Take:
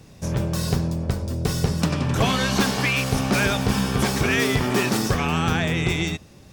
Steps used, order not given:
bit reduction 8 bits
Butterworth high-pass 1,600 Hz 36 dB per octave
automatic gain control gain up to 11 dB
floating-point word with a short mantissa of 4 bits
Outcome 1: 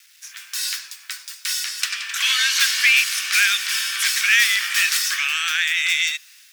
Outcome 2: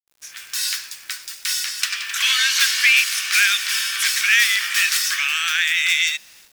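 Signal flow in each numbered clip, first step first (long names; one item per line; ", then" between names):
automatic gain control, then bit reduction, then Butterworth high-pass, then floating-point word with a short mantissa
floating-point word with a short mantissa, then Butterworth high-pass, then automatic gain control, then bit reduction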